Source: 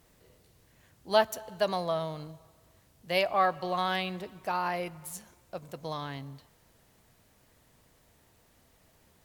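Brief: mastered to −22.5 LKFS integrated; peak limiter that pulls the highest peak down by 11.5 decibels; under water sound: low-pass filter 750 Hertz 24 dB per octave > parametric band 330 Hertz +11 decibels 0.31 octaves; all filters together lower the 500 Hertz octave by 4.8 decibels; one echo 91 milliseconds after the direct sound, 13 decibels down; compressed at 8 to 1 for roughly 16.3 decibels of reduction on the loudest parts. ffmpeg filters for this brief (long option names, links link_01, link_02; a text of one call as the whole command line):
ffmpeg -i in.wav -af "equalizer=frequency=500:width_type=o:gain=-7,acompressor=threshold=-39dB:ratio=8,alimiter=level_in=12.5dB:limit=-24dB:level=0:latency=1,volume=-12.5dB,lowpass=frequency=750:width=0.5412,lowpass=frequency=750:width=1.3066,equalizer=frequency=330:width_type=o:width=0.31:gain=11,aecho=1:1:91:0.224,volume=27dB" out.wav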